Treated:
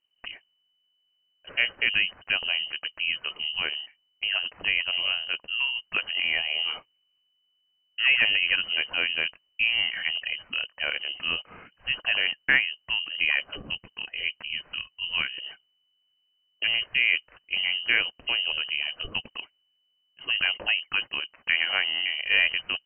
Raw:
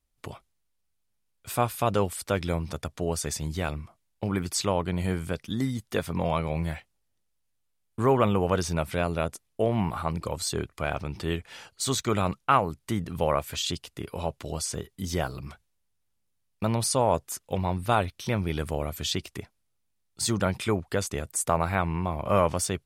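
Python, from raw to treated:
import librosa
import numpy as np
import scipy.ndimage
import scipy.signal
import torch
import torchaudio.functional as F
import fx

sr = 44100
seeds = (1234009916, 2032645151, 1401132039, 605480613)

y = fx.peak_eq(x, sr, hz=1800.0, db=-3.0, octaves=1.8, at=(18.2, 18.81))
y = fx.freq_invert(y, sr, carrier_hz=3000)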